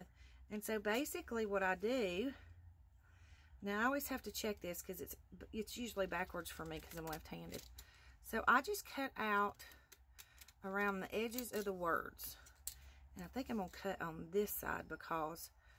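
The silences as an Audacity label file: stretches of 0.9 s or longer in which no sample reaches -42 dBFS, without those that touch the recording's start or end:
2.300000	3.650000	silence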